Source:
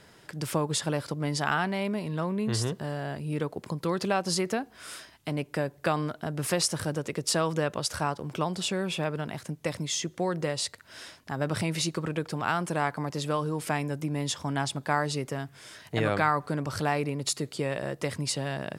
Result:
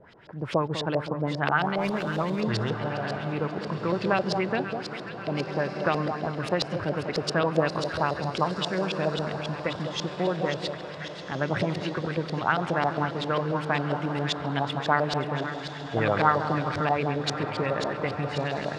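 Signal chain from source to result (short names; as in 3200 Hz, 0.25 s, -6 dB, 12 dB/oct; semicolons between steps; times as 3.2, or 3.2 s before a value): split-band echo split 1300 Hz, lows 0.199 s, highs 0.533 s, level -8 dB; LFO low-pass saw up 7.4 Hz 480–4600 Hz; on a send: diffused feedback echo 1.45 s, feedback 42%, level -10.5 dB; 1.78–2.41 on the sum: running maximum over 3 samples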